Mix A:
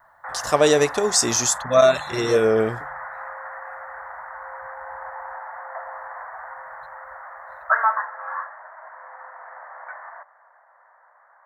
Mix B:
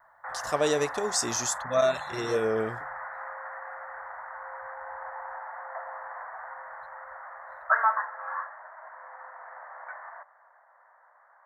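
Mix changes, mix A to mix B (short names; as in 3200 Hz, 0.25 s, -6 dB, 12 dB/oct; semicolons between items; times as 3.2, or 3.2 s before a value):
speech -9.0 dB; background -4.0 dB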